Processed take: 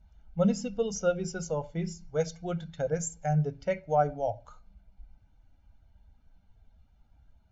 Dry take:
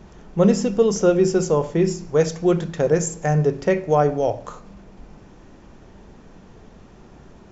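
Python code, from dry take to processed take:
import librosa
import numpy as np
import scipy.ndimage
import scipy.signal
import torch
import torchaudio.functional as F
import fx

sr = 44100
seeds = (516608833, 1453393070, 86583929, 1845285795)

y = fx.bin_expand(x, sr, power=1.5)
y = y + 0.75 * np.pad(y, (int(1.4 * sr / 1000.0), 0))[:len(y)]
y = F.gain(torch.from_numpy(y), -8.5).numpy()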